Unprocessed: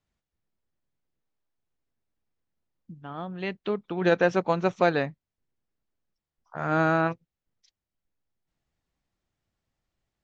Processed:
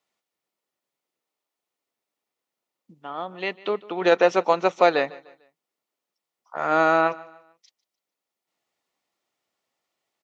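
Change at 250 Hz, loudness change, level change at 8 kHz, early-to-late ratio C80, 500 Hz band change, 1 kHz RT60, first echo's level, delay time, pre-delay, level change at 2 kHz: -1.0 dB, +4.0 dB, no reading, no reverb, +4.5 dB, no reverb, -21.0 dB, 149 ms, no reverb, +3.0 dB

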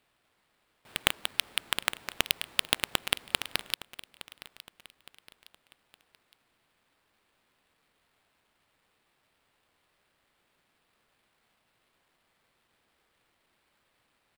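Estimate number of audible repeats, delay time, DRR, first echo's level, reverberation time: 3, 864 ms, no reverb, -17.0 dB, no reverb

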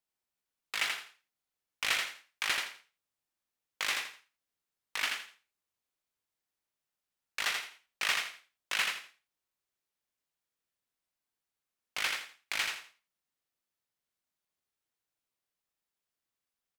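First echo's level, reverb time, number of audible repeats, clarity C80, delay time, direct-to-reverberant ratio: -4.0 dB, no reverb, 3, no reverb, 83 ms, no reverb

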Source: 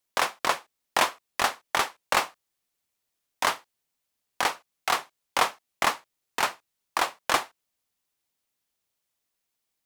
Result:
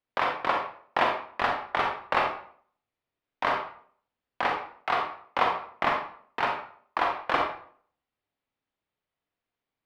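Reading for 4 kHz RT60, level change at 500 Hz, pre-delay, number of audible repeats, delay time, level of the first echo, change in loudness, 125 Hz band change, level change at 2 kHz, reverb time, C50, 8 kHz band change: 0.40 s, +2.0 dB, 33 ms, no echo, no echo, no echo, -1.0 dB, +3.0 dB, -1.5 dB, 0.55 s, 4.0 dB, under -20 dB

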